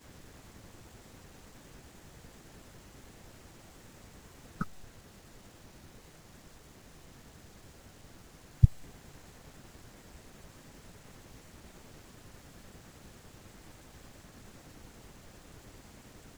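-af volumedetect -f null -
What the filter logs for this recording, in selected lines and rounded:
mean_volume: -40.9 dB
max_volume: -4.6 dB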